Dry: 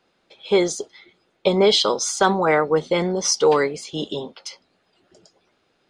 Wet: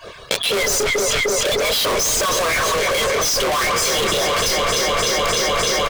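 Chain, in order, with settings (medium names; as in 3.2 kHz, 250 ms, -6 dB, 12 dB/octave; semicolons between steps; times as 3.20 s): harmonic-percussive separation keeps percussive; comb 1.8 ms, depth 99%; in parallel at -11.5 dB: Schmitt trigger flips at -19.5 dBFS; on the sum: chorus 1.8 Hz, depth 7.9 ms; waveshaping leveller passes 5; on a send: echo whose repeats swap between lows and highs 151 ms, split 1.5 kHz, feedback 87%, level -10 dB; on the sum: saturation -22 dBFS, distortion -5 dB; level flattener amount 100%; trim +3.5 dB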